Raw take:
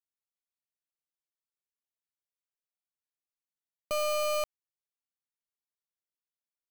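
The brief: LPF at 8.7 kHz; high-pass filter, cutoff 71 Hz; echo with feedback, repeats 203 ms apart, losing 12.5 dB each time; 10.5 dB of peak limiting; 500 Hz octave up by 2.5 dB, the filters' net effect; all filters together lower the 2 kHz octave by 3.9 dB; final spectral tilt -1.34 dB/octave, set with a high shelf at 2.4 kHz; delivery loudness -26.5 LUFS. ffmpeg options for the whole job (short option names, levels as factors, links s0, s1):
-af "highpass=71,lowpass=8700,equalizer=f=500:t=o:g=3.5,equalizer=f=2000:t=o:g=-8.5,highshelf=f=2400:g=5,alimiter=level_in=2.99:limit=0.0631:level=0:latency=1,volume=0.335,aecho=1:1:203|406|609:0.237|0.0569|0.0137,volume=5.01"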